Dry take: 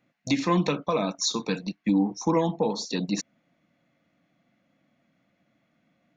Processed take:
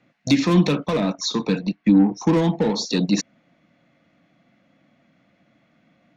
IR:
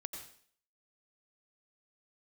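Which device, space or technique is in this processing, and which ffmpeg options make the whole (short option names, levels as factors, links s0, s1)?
one-band saturation: -filter_complex "[0:a]lowpass=6000,acrossover=split=390|3200[s0][s1][s2];[s1]asoftclip=type=tanh:threshold=0.02[s3];[s0][s3][s2]amix=inputs=3:normalize=0,asettb=1/sr,asplit=3[s4][s5][s6];[s4]atrim=end=1.004[s7];[s5]atrim=start=1:end=2.27,asetpts=PTS-STARTPTS,afade=t=in:d=0.004:c=qsin,afade=t=out:st=1.266:d=0.004:c=qsin,highshelf=f=4700:g=-11.5[s8];[s6]atrim=start=2.266[s9];[s7][s8]acrossfade=d=0.004:c1=hsin:c2=qsin[s10];[s10][s9]acrossfade=d=0.004:c1=qsin:c2=hsin,volume=2.66"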